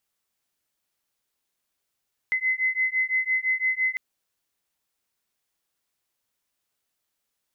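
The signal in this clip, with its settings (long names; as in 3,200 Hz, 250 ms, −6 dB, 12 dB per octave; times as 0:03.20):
two tones that beat 2,040 Hz, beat 5.9 Hz, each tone −25 dBFS 1.65 s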